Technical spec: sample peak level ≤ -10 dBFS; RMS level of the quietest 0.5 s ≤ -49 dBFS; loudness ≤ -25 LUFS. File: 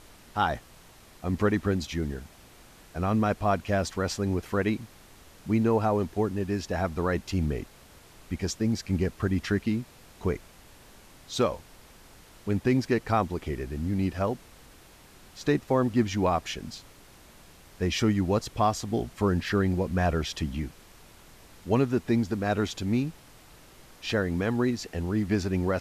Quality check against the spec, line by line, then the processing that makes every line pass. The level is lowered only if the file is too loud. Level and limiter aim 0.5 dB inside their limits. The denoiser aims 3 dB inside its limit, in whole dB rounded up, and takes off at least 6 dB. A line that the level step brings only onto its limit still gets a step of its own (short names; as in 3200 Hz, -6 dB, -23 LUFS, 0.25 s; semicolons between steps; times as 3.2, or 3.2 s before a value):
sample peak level -12.0 dBFS: OK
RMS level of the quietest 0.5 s -53 dBFS: OK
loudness -28.5 LUFS: OK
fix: none